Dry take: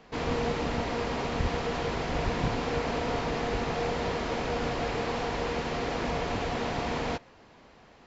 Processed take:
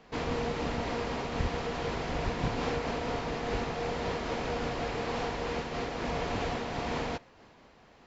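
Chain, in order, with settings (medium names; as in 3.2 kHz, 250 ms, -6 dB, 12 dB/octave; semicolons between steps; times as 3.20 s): random flutter of the level, depth 50%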